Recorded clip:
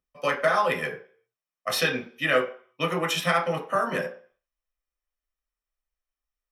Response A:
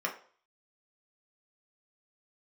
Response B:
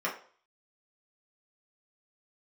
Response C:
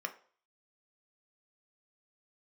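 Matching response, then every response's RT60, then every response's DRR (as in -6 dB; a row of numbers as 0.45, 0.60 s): A; 0.45, 0.45, 0.45 s; -0.5, -5.0, 5.5 dB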